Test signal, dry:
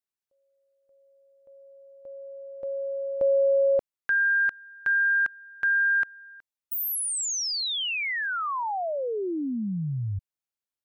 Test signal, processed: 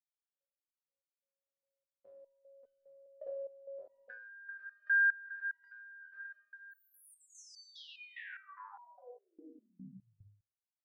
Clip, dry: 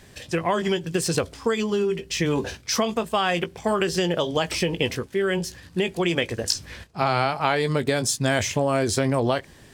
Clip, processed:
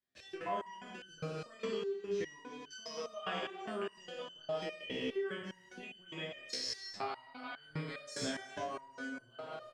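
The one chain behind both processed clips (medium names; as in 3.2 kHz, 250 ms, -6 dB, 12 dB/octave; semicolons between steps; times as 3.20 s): thinning echo 103 ms, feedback 31%, high-pass 230 Hz, level -14 dB; level held to a coarse grid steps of 24 dB; three-band isolator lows -13 dB, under 160 Hz, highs -18 dB, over 7 kHz; doubling 27 ms -2 dB; gated-style reverb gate 450 ms falling, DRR -0.5 dB; gate with hold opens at -50 dBFS, range -17 dB; compression 16:1, threshold -28 dBFS; band-stop 850 Hz, Q 14; resonator arpeggio 4.9 Hz 64–1500 Hz; trim +3 dB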